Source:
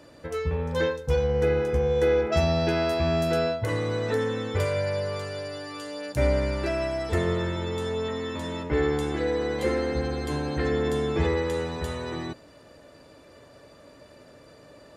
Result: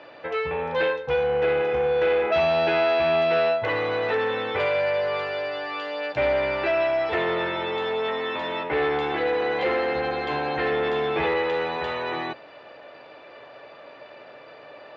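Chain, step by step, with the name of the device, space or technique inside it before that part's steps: overdrive pedal into a guitar cabinet (overdrive pedal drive 19 dB, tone 5800 Hz, clips at -10.5 dBFS; speaker cabinet 84–3600 Hz, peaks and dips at 89 Hz -8 dB, 190 Hz -6 dB, 270 Hz -5 dB, 770 Hz +6 dB, 2500 Hz +4 dB); gain -4 dB

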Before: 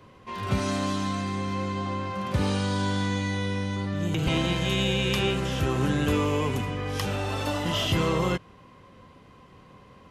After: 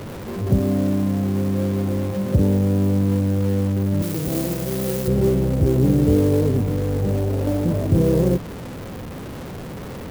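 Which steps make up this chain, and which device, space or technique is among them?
inverse Chebyshev low-pass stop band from 1900 Hz, stop band 60 dB; early CD player with a faulty converter (zero-crossing step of -36.5 dBFS; clock jitter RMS 0.028 ms); 4.02–5.08 tilt +3 dB/oct; gain +8 dB

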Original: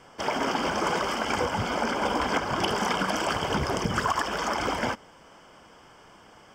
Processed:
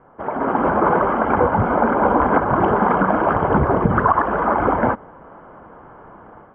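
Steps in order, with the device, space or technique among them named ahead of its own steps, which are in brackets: action camera in a waterproof case (LPF 1400 Hz 24 dB/oct; AGC gain up to 9 dB; gain +2.5 dB; AAC 96 kbps 44100 Hz)

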